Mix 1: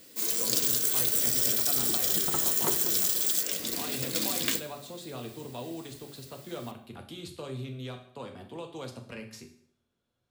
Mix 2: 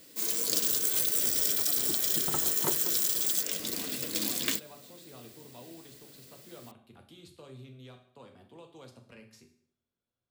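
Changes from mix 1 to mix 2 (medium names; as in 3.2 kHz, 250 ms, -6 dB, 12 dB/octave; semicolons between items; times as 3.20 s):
speech -10.5 dB; background: send off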